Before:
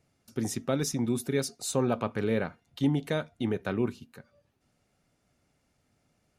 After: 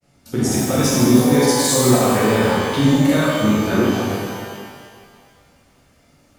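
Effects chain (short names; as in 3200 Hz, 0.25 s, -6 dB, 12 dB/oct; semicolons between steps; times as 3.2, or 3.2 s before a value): grains, spray 39 ms, pitch spread up and down by 0 st; maximiser +21.5 dB; shimmer reverb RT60 1.8 s, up +12 st, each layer -8 dB, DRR -6.5 dB; gain -11 dB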